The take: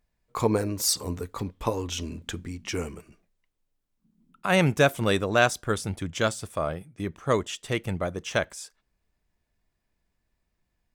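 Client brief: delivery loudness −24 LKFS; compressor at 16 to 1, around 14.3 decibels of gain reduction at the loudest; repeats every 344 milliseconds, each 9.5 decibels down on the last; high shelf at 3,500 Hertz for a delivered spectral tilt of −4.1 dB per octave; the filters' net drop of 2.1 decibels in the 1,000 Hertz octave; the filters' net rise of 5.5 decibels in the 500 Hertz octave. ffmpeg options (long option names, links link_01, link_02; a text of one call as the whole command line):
ffmpeg -i in.wav -af "equalizer=frequency=500:width_type=o:gain=8.5,equalizer=frequency=1000:width_type=o:gain=-8,highshelf=frequency=3500:gain=4.5,acompressor=threshold=-25dB:ratio=16,aecho=1:1:344|688|1032|1376:0.335|0.111|0.0365|0.012,volume=7.5dB" out.wav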